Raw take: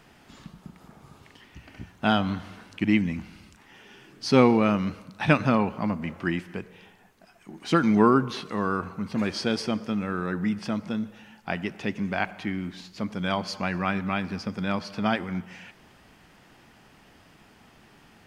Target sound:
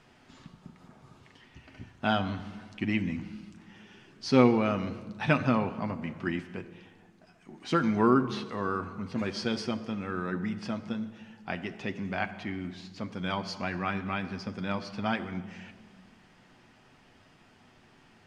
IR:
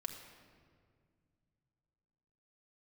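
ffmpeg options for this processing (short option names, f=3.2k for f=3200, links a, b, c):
-filter_complex "[0:a]lowpass=7.9k,asplit=2[a][b];[1:a]atrim=start_sample=2205,asetrate=61740,aresample=44100,adelay=8[c];[b][c]afir=irnorm=-1:irlink=0,volume=-3dB[d];[a][d]amix=inputs=2:normalize=0,volume=-5dB"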